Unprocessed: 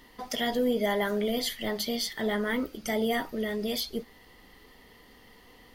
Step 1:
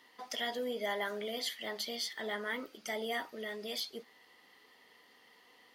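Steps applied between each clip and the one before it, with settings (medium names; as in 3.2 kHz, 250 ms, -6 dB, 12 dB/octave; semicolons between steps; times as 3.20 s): frequency weighting A; trim -6 dB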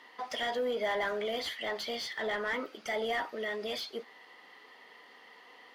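overdrive pedal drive 16 dB, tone 1.5 kHz, clips at -23 dBFS; trim +1.5 dB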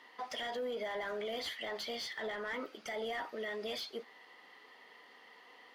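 peak limiter -29 dBFS, peak gain reduction 6 dB; trim -3 dB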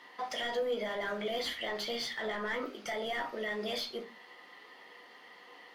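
simulated room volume 140 m³, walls furnished, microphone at 0.87 m; trim +3 dB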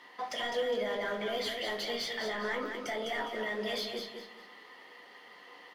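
feedback delay 205 ms, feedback 32%, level -6 dB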